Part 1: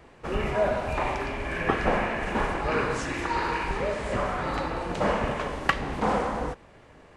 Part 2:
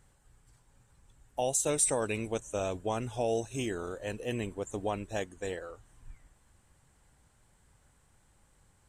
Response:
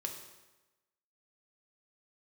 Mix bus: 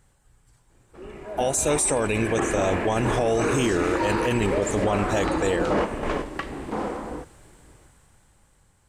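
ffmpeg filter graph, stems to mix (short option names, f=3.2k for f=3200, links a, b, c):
-filter_complex "[0:a]equalizer=f=330:w=1.9:g=10,adelay=700,volume=-10.5dB[a];[1:a]volume=3dB,asplit=2[b][c];[c]apad=whole_len=346788[d];[a][d]sidechaingate=range=-8dB:threshold=-51dB:ratio=16:detection=peak[e];[e][b]amix=inputs=2:normalize=0,dynaudnorm=f=360:g=9:m=13dB,alimiter=limit=-14dB:level=0:latency=1:release=12"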